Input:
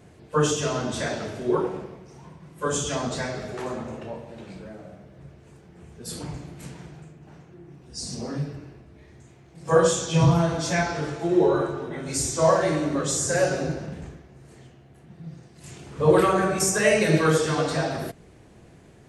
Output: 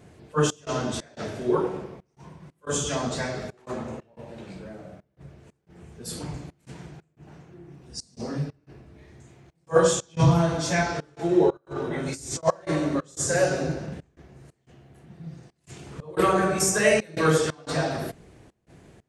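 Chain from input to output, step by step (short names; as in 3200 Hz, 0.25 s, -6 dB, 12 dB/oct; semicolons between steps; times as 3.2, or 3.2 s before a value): 11.57–12.43 negative-ratio compressor -32 dBFS, ratio -0.5; step gate "xxx.xx.xx" 90 bpm -24 dB; attack slew limiter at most 470 dB/s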